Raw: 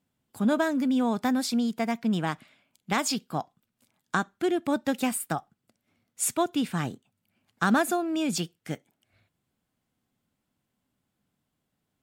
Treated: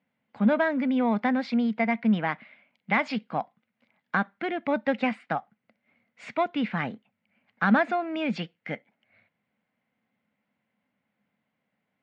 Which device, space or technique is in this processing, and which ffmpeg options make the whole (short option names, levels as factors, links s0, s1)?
overdrive pedal into a guitar cabinet: -filter_complex "[0:a]asplit=2[s0][s1];[s1]highpass=f=720:p=1,volume=3.16,asoftclip=type=tanh:threshold=0.282[s2];[s0][s2]amix=inputs=2:normalize=0,lowpass=f=1900:p=1,volume=0.501,highpass=110,equalizer=f=210:t=q:w=4:g=8,equalizer=f=360:t=q:w=4:g=-8,equalizer=f=530:t=q:w=4:g=4,equalizer=f=1200:t=q:w=4:g=-3,equalizer=f=2100:t=q:w=4:g=9,equalizer=f=3500:t=q:w=4:g=-4,lowpass=f=3900:w=0.5412,lowpass=f=3900:w=1.3066"